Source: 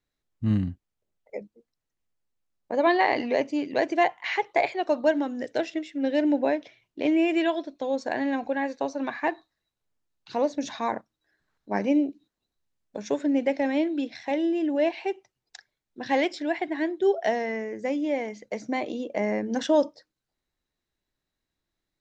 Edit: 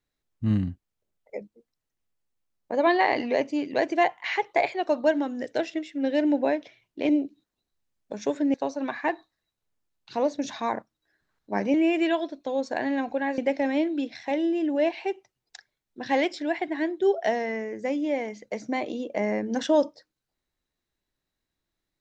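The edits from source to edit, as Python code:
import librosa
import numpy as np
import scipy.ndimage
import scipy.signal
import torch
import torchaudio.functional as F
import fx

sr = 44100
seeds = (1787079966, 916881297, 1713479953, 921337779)

y = fx.edit(x, sr, fx.swap(start_s=7.09, length_s=1.64, other_s=11.93, other_length_s=1.45), tone=tone)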